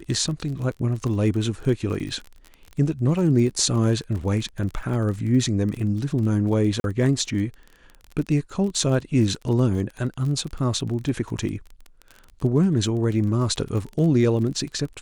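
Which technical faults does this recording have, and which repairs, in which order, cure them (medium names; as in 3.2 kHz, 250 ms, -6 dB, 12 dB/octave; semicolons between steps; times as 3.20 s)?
crackle 30 per s -30 dBFS
6.80–6.84 s: dropout 41 ms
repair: de-click; interpolate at 6.80 s, 41 ms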